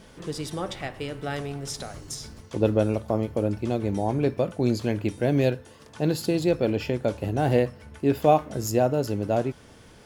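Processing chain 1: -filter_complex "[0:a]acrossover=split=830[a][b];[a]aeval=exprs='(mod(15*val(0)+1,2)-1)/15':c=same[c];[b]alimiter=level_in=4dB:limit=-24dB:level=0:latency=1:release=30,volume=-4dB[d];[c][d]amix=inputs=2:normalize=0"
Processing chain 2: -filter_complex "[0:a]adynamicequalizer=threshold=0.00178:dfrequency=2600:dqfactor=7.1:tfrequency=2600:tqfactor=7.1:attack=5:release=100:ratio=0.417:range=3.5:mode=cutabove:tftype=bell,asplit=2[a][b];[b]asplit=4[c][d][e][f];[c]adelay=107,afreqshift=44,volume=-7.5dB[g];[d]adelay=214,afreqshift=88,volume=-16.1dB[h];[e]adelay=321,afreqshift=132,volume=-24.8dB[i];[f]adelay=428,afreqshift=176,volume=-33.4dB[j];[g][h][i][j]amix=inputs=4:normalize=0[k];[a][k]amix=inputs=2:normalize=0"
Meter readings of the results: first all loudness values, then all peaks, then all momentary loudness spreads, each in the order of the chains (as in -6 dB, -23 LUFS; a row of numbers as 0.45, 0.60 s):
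-30.5, -25.5 LUFS; -19.5, -6.0 dBFS; 9, 12 LU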